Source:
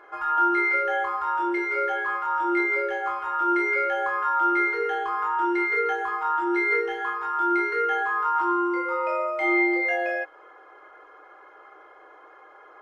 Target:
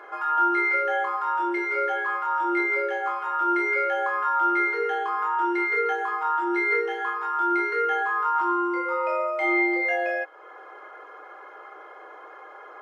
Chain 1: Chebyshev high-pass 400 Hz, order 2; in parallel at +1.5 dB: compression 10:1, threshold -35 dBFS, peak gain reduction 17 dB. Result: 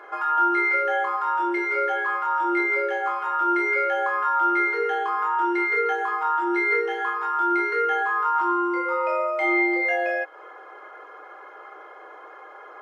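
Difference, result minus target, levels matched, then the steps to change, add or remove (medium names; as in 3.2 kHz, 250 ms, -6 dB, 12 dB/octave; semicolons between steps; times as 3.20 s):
compression: peak gain reduction -10.5 dB
change: compression 10:1, threshold -46.5 dBFS, peak gain reduction 27 dB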